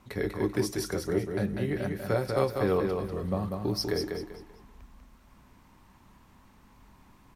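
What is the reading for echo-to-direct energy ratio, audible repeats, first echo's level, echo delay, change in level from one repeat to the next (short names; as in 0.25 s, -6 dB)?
-4.5 dB, 3, -5.0 dB, 0.194 s, -10.5 dB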